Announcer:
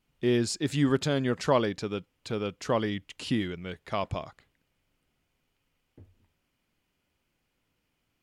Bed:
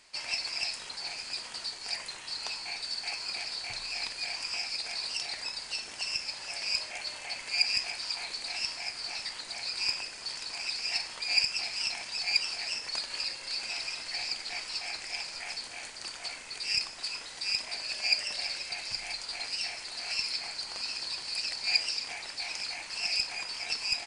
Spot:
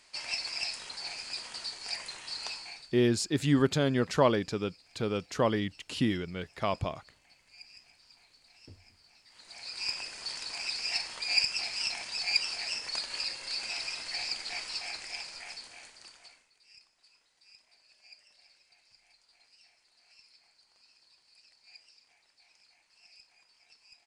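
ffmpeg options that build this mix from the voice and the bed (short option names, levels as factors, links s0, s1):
-filter_complex "[0:a]adelay=2700,volume=1[s0];[1:a]volume=14.1,afade=t=out:st=2.47:d=0.46:silence=0.0668344,afade=t=in:st=9.26:d=0.9:silence=0.0595662,afade=t=out:st=14.62:d=1.89:silence=0.0421697[s1];[s0][s1]amix=inputs=2:normalize=0"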